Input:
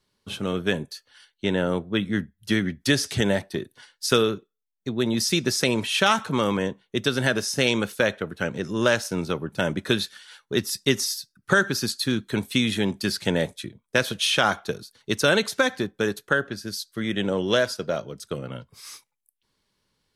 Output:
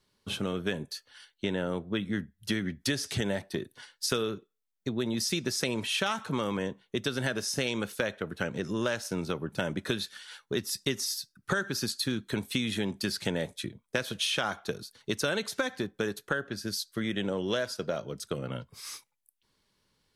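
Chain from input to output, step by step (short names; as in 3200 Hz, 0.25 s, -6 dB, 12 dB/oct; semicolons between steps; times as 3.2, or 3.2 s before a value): compressor 3:1, threshold -29 dBFS, peak gain reduction 11.5 dB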